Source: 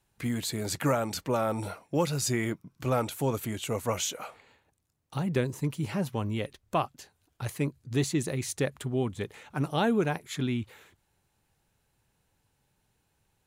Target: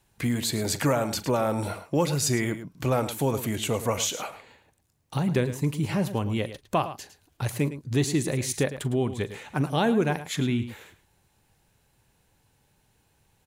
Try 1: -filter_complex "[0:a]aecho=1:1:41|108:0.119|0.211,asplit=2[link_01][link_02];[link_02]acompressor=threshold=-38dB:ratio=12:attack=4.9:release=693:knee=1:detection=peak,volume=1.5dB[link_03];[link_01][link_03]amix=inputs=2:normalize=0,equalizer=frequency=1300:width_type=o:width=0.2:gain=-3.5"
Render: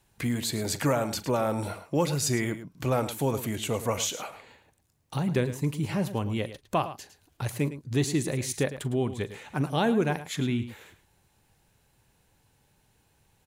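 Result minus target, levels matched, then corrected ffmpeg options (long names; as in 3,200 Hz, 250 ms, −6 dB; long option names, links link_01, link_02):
downward compressor: peak gain reduction +8 dB
-filter_complex "[0:a]aecho=1:1:41|108:0.119|0.211,asplit=2[link_01][link_02];[link_02]acompressor=threshold=-29.5dB:ratio=12:attack=4.9:release=693:knee=1:detection=peak,volume=1.5dB[link_03];[link_01][link_03]amix=inputs=2:normalize=0,equalizer=frequency=1300:width_type=o:width=0.2:gain=-3.5"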